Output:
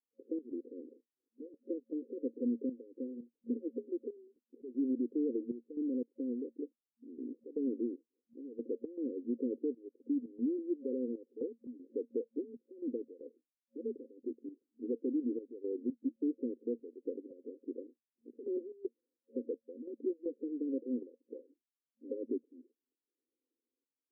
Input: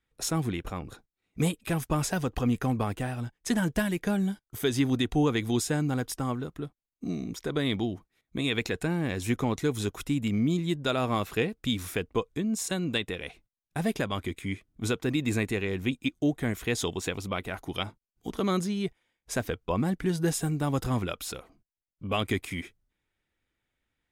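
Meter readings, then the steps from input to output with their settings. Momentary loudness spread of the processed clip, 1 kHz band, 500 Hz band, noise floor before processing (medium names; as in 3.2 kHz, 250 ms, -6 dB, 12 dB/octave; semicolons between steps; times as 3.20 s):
15 LU, under -40 dB, -7.0 dB, under -85 dBFS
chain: FFT band-pass 230–540 Hz; peak limiter -22.5 dBFS, peak gain reduction 5.5 dB; trance gate ".xx.xxxxxx." 117 bpm -12 dB; distance through air 480 m; trim -2.5 dB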